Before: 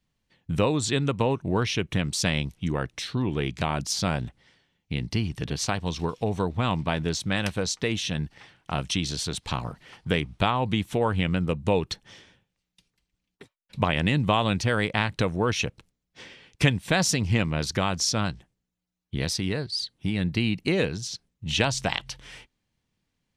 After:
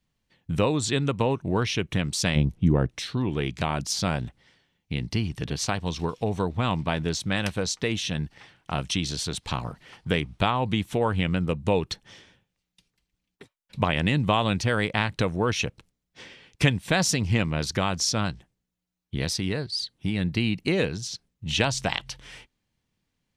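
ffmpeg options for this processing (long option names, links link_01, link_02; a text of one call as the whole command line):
ffmpeg -i in.wav -filter_complex "[0:a]asplit=3[link_01][link_02][link_03];[link_01]afade=type=out:start_time=2.35:duration=0.02[link_04];[link_02]tiltshelf=frequency=920:gain=8.5,afade=type=in:start_time=2.35:duration=0.02,afade=type=out:start_time=2.9:duration=0.02[link_05];[link_03]afade=type=in:start_time=2.9:duration=0.02[link_06];[link_04][link_05][link_06]amix=inputs=3:normalize=0" out.wav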